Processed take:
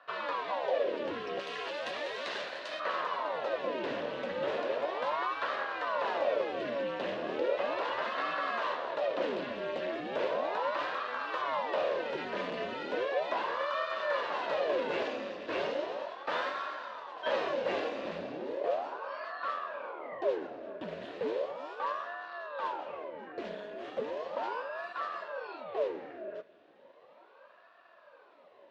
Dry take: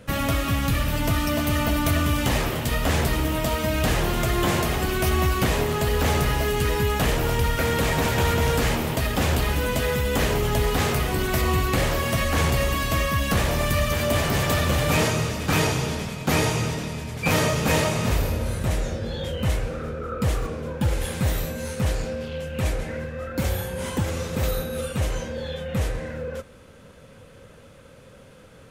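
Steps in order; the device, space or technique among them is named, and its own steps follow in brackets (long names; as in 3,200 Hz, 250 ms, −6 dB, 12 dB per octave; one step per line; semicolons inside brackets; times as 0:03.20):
0:01.39–0:02.80: RIAA equalisation recording
voice changer toy (ring modulator whose carrier an LFO sweeps 670 Hz, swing 85%, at 0.36 Hz; loudspeaker in its box 440–3,500 Hz, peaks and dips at 560 Hz +8 dB, 800 Hz −7 dB, 1,300 Hz −6 dB, 2,200 Hz −7 dB, 3,200 Hz −4 dB)
level −5.5 dB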